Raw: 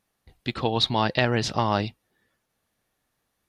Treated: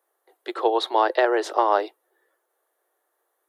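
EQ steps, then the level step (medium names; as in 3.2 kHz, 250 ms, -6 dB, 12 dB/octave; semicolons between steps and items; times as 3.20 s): steep high-pass 340 Hz 72 dB/octave; peaking EQ 2.5 kHz -10.5 dB 0.59 oct; peaking EQ 5 kHz -15 dB 1.3 oct; +6.5 dB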